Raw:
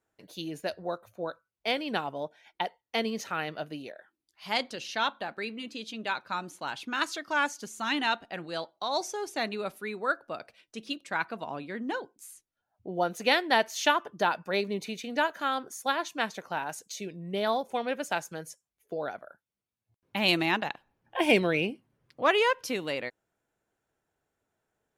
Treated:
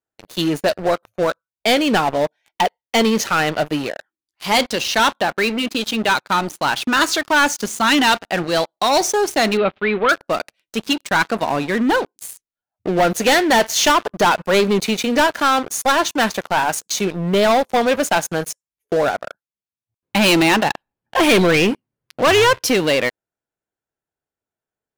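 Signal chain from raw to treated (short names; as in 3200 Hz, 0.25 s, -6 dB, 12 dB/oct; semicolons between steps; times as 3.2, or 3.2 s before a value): 22.26–22.66 octaver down 2 oct, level -5 dB; sample leveller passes 5; 9.57–10.09 steep low-pass 3600 Hz 36 dB/oct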